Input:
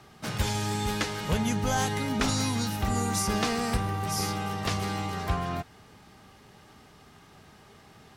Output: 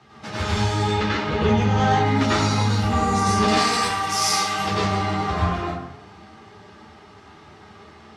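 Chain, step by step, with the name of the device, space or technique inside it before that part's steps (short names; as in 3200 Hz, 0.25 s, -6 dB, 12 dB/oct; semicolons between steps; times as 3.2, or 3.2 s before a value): 0.84–2.05 LPF 4400 Hz 12 dB/oct; HPF 73 Hz; string-machine ensemble chorus (ensemble effect; LPF 5400 Hz 12 dB/oct); 3.48–4.59 tilt +4 dB/oct; plate-style reverb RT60 0.75 s, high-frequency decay 0.6×, pre-delay 80 ms, DRR -7 dB; gain +3.5 dB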